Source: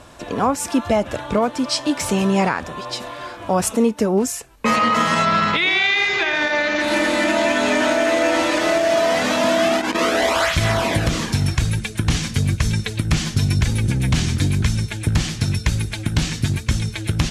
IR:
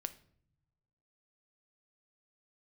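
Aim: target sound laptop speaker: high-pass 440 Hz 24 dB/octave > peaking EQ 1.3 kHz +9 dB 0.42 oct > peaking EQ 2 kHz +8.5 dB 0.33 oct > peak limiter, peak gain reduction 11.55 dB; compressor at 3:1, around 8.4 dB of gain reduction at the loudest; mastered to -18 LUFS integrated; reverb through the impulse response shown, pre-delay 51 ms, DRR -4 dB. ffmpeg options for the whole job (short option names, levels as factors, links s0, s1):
-filter_complex "[0:a]acompressor=threshold=0.0562:ratio=3,asplit=2[s0][s1];[1:a]atrim=start_sample=2205,adelay=51[s2];[s1][s2]afir=irnorm=-1:irlink=0,volume=2[s3];[s0][s3]amix=inputs=2:normalize=0,highpass=f=440:w=0.5412,highpass=f=440:w=1.3066,equalizer=f=1300:t=o:w=0.42:g=9,equalizer=f=2000:t=o:w=0.33:g=8.5,volume=1.88,alimiter=limit=0.355:level=0:latency=1"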